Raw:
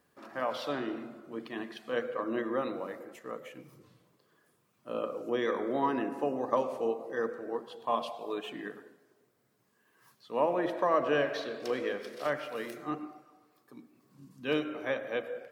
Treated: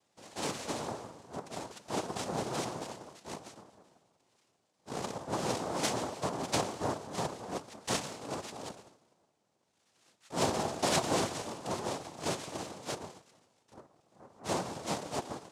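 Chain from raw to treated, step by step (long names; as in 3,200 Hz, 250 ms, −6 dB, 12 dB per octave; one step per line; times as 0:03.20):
cochlear-implant simulation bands 2
level −3 dB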